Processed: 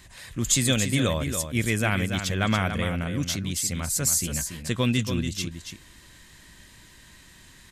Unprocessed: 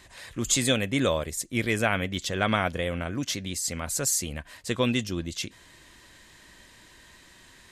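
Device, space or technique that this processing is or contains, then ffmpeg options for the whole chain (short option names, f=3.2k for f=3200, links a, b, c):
smiley-face EQ: -filter_complex "[0:a]equalizer=f=160:t=o:w=0.77:g=3.5,lowshelf=f=170:g=6,equalizer=f=540:t=o:w=1.7:g=-4,highshelf=f=9.4k:g=7,asettb=1/sr,asplit=3[a][b][c];[a]atrim=end=4.214[d];[b]atrim=start=4.21:end=4.63,asetpts=PTS-STARTPTS,afade=t=in:d=0.004:c=qsin,afade=t=out:st=0.416:d=0.004:c=qsin,asplit=2[e][f];[f]adelay=18,volume=-5.5dB[g];[e][g]amix=inputs=2:normalize=0,atrim=end_sample=18522[h];[c]atrim=start=4.626[i];[d][h]acrossfade=d=0.004:c1=hsin:c2=qsin[j];[j][i]acrossfade=d=0.004:c1=qsin:c2=hsin,aecho=1:1:283:0.398"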